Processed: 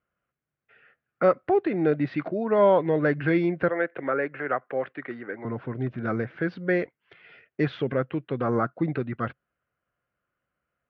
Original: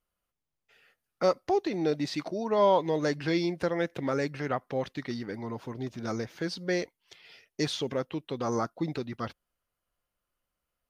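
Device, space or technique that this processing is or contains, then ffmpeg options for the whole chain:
bass cabinet: -filter_complex "[0:a]asettb=1/sr,asplit=3[link_01][link_02][link_03];[link_01]atrim=end=3.684[link_04];[link_02]atrim=start=3.68:end=5.45,asetpts=PTS-STARTPTS,afade=type=in:duration=0.004:curve=qsin,afade=type=out:start_time=1.766:duration=0.004:curve=qsin,acrossover=split=320 3300:gain=0.126 1 0.178[link_05][link_06][link_07];[link_05][link_06][link_07]amix=inputs=3:normalize=0[link_08];[link_03]atrim=start=5.446[link_09];[link_04][link_08]acrossfade=duration=0.004:curve1=hsin:curve2=qsin[link_10];[link_10][link_09]acrossfade=duration=0.004:curve1=qsin:curve2=hsin,highpass=80,equalizer=frequency=130:width_type=q:width=4:gain=5,equalizer=frequency=910:width_type=q:width=4:gain=-7,equalizer=frequency=1500:width_type=q:width=4:gain=6,lowpass=frequency=2400:width=0.5412,lowpass=frequency=2400:width=1.3066,volume=5dB"

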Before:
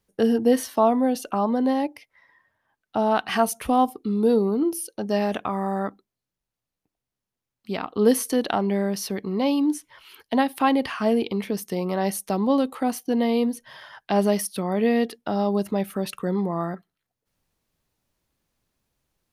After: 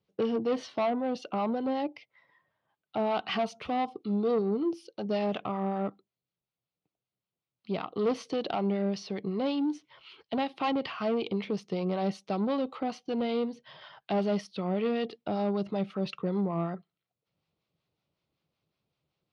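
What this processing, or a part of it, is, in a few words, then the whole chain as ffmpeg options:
guitar amplifier with harmonic tremolo: -filter_complex "[0:a]acrossover=split=760[link_01][link_02];[link_01]aeval=exprs='val(0)*(1-0.5/2+0.5/2*cos(2*PI*5.3*n/s))':channel_layout=same[link_03];[link_02]aeval=exprs='val(0)*(1-0.5/2-0.5/2*cos(2*PI*5.3*n/s))':channel_layout=same[link_04];[link_03][link_04]amix=inputs=2:normalize=0,asoftclip=type=tanh:threshold=-21dB,highpass=110,equalizer=frequency=150:width_type=q:width=4:gain=5,equalizer=frequency=250:width_type=q:width=4:gain=-6,equalizer=frequency=930:width_type=q:width=4:gain=-4,equalizer=frequency=1700:width_type=q:width=4:gain=-10,lowpass=frequency=4400:width=0.5412,lowpass=frequency=4400:width=1.3066"

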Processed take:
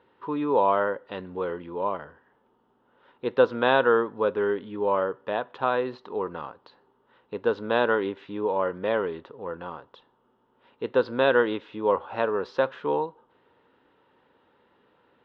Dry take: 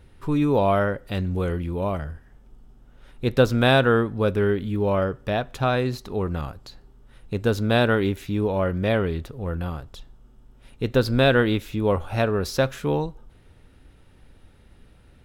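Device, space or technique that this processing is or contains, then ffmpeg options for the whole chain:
phone earpiece: -af "highpass=350,equalizer=frequency=480:width_type=q:width=4:gain=4,equalizer=frequency=680:width_type=q:width=4:gain=-4,equalizer=frequency=970:width_type=q:width=4:gain=9,equalizer=frequency=2300:width_type=q:width=4:gain=-8,lowpass=frequency=3200:width=0.5412,lowpass=frequency=3200:width=1.3066,volume=-2dB"

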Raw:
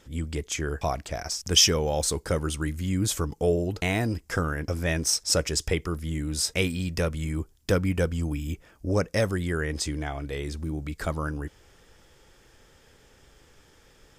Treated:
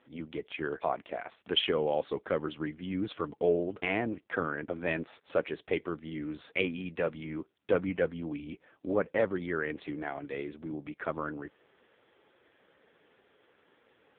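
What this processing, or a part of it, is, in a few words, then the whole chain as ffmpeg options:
telephone: -filter_complex "[0:a]asplit=3[link_01][link_02][link_03];[link_01]afade=type=out:start_time=8.45:duration=0.02[link_04];[link_02]adynamicequalizer=threshold=0.00141:dfrequency=8400:dqfactor=8:tfrequency=8400:tqfactor=8:attack=5:release=100:ratio=0.375:range=1.5:mode=cutabove:tftype=bell,afade=type=in:start_time=8.45:duration=0.02,afade=type=out:start_time=9.58:duration=0.02[link_05];[link_03]afade=type=in:start_time=9.58:duration=0.02[link_06];[link_04][link_05][link_06]amix=inputs=3:normalize=0,highpass=250,lowpass=3400,volume=-1dB" -ar 8000 -c:a libopencore_amrnb -b:a 5900

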